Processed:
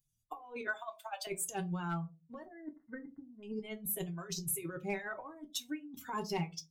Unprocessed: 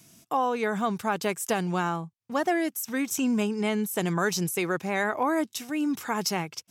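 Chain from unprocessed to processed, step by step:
spectral dynamics exaggerated over time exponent 2
0:00.67–0:01.27: Butterworth high-pass 600 Hz 72 dB per octave
compressor whose output falls as the input rises −36 dBFS, ratio −0.5
hard clipping −24 dBFS, distortion −25 dB
0:02.45–0:03.43: linear-phase brick-wall low-pass 2,100 Hz
convolution reverb RT60 0.25 s, pre-delay 3 ms, DRR 2 dB
level −5 dB

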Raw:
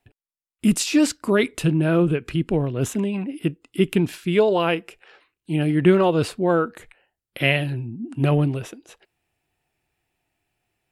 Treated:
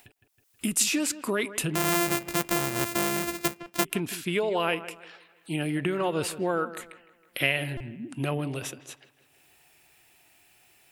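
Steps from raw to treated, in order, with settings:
0:01.75–0:03.85: samples sorted by size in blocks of 128 samples
dynamic equaliser 4,400 Hz, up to −6 dB, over −41 dBFS, Q 1.2
downward compressor 12 to 1, threshold −19 dBFS, peak gain reduction 10 dB
spectral tilt +2.5 dB per octave
delay with a low-pass on its return 160 ms, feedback 33%, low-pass 2,800 Hz, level −14.5 dB
upward compression, threshold −46 dBFS
buffer that repeats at 0:03.63/0:07.77, samples 128, times 10
level −1 dB

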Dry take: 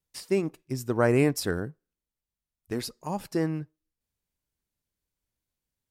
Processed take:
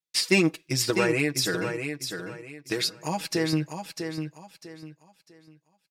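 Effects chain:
meter weighting curve D
noise gate with hold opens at −54 dBFS
notch filter 3,000 Hz, Q 17
comb filter 6.2 ms, depth 89%
0:00.90–0:03.53: downward compressor 2.5 to 1, threshold −32 dBFS, peak gain reduction 12.5 dB
repeating echo 649 ms, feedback 29%, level −7 dB
level +5 dB

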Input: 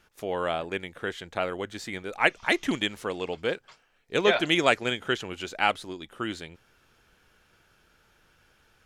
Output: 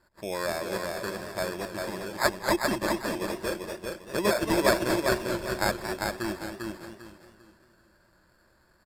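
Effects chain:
decimation without filtering 15×
EQ curve with evenly spaced ripples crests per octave 1.3, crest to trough 8 dB
downsampling to 32,000 Hz
on a send: repeating echo 397 ms, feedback 30%, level −4 dB
on the sum: feedback echo with a swinging delay time 226 ms, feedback 33%, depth 124 cents, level −9 dB
level −3 dB

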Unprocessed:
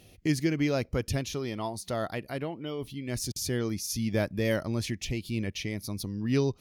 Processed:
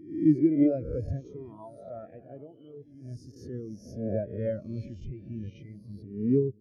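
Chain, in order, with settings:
peak hold with a rise ahead of every peak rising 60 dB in 1.44 s
on a send: delay that swaps between a low-pass and a high-pass 366 ms, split 1,100 Hz, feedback 77%, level −11 dB
on the sum: every bin expanded away from the loudest bin 2.5 to 1

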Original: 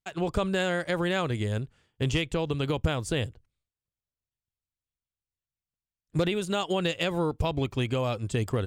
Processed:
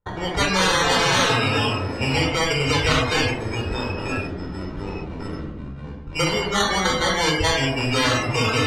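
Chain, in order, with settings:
decimation without filtering 17×
delay with pitch and tempo change per echo 127 ms, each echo −4 semitones, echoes 3, each echo −6 dB
convolution reverb RT60 1.1 s, pre-delay 23 ms, DRR 0 dB
noise reduction from a noise print of the clip's start 22 dB
head-to-tape spacing loss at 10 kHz 28 dB
every bin compressed towards the loudest bin 4 to 1
level +1.5 dB

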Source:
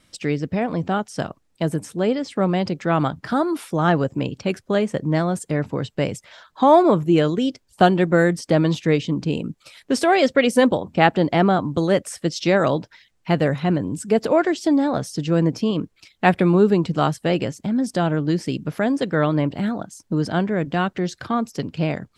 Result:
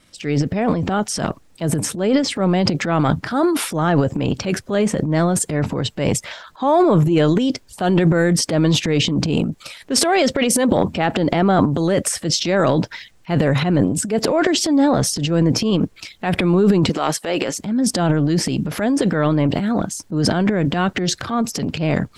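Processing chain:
0:16.89–0:17.58: high-pass filter 390 Hz 12 dB per octave
brickwall limiter −10.5 dBFS, peak gain reduction 9 dB
transient designer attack −6 dB, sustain +12 dB
level +3 dB

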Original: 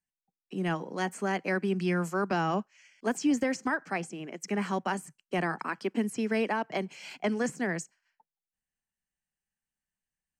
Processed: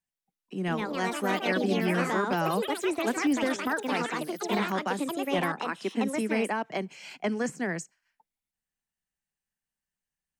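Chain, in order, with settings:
delay with pitch and tempo change per echo 263 ms, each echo +4 semitones, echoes 3

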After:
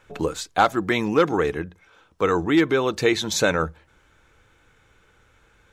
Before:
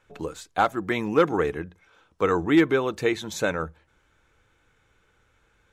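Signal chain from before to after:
dynamic equaliser 4,800 Hz, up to +6 dB, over −48 dBFS, Q 1.2
in parallel at −2.5 dB: brickwall limiter −16.5 dBFS, peak gain reduction 8 dB
on the sum: speech leveller within 3 dB 0.5 s

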